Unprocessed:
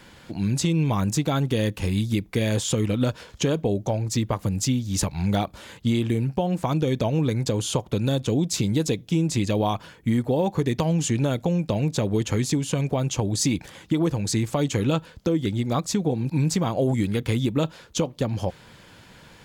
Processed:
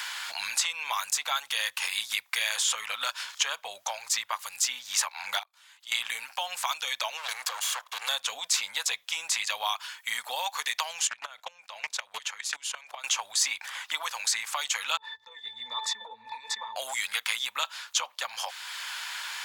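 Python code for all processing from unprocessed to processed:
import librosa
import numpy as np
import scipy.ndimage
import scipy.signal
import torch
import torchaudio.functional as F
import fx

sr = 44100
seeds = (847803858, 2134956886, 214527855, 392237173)

y = fx.chain(x, sr, fx.over_compress(threshold_db=-34.0, ratio=-1.0),
    fx.gate_flip(shuts_db=-26.0, range_db=-32), at=(5.39, 5.92))
y = fx.chain(y, sr, fx.lower_of_two(delay_ms=1.8),
    fx.level_steps(step_db=9), at=(7.17, 8.09))
y = fx.chain(y, sr, fx.high_shelf(hz=6600.0, db=-6.5),
    fx.level_steps(step_db=21),
    fx.doppler_dist(depth_ms=0.23), at=(11.07, 13.04))
y = fx.chain(y, sr, fx.octave_resonator(note='A', decay_s=0.14),
    fx.sustainer(db_per_s=26.0), at=(14.97, 16.76))
y = scipy.signal.sosfilt(scipy.signal.cheby2(4, 50, 380.0, 'highpass', fs=sr, output='sos'), y)
y = fx.band_squash(y, sr, depth_pct=70)
y = y * 10.0 ** (5.5 / 20.0)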